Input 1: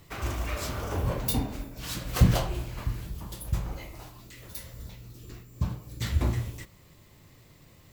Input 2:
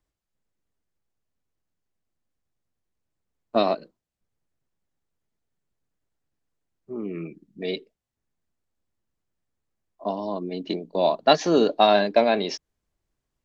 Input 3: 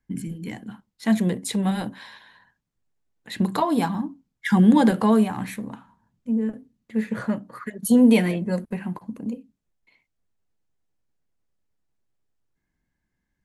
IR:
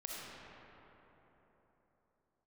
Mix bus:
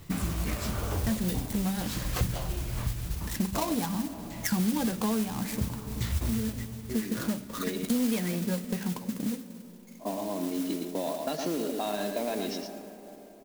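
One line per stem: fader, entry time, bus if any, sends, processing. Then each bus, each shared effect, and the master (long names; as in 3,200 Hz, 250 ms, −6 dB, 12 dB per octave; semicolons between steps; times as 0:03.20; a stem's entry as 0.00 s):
+1.5 dB, 0.00 s, send −18.5 dB, no echo send, automatic ducking −11 dB, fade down 0.30 s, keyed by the second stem
−7.5 dB, 0.00 s, send −9.5 dB, echo send −5 dB, parametric band 270 Hz +10.5 dB 0.24 octaves; brickwall limiter −13.5 dBFS, peak gain reduction 10.5 dB
0.0 dB, 0.00 s, send −17.5 dB, no echo send, gap after every zero crossing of 0.14 ms; high-shelf EQ 4,800 Hz +12 dB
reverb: on, RT60 4.0 s, pre-delay 20 ms
echo: single-tap delay 114 ms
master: low-shelf EQ 220 Hz +5 dB; noise that follows the level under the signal 13 dB; downward compressor 4 to 1, threshold −28 dBFS, peak gain reduction 18 dB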